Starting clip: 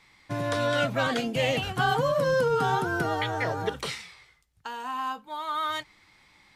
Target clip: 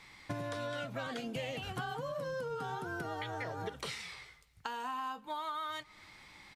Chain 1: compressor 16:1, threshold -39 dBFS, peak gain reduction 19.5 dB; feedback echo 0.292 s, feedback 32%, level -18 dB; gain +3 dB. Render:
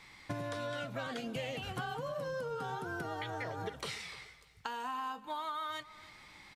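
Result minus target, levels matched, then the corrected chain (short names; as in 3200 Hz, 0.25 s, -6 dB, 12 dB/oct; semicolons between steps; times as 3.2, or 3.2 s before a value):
echo-to-direct +9.5 dB
compressor 16:1, threshold -39 dBFS, peak gain reduction 19.5 dB; feedback echo 0.292 s, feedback 32%, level -27.5 dB; gain +3 dB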